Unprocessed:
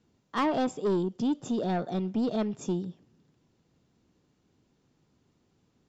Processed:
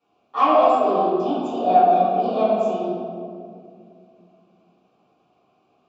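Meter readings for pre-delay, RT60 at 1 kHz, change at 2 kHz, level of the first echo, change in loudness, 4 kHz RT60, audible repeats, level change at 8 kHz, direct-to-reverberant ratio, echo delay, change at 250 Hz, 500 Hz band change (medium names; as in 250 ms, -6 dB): 4 ms, 1.9 s, +4.5 dB, no echo, +11.0 dB, 1.2 s, no echo, no reading, -13.0 dB, no echo, +2.5 dB, +13.0 dB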